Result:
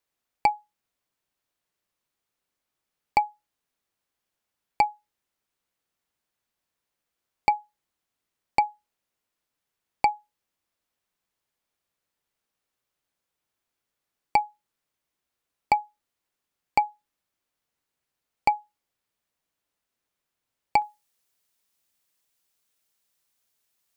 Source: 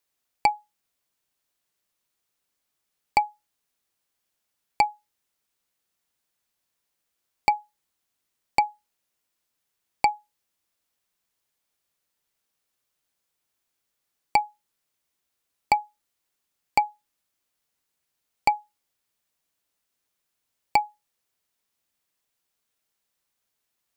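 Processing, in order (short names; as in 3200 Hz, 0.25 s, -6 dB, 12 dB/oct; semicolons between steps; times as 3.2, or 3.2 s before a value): high shelf 3400 Hz -7 dB, from 20.82 s +5 dB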